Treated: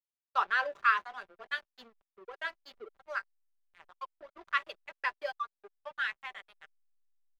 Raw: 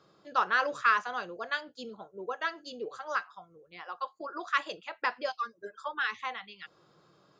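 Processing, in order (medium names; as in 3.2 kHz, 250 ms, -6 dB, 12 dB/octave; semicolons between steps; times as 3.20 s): spectral noise reduction 8 dB; treble shelf 2.8 kHz +6 dB; hysteresis with a dead band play -35.5 dBFS; three-band isolator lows -15 dB, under 470 Hz, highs -14 dB, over 3.8 kHz; comb 5.1 ms, depth 32%; trim -2.5 dB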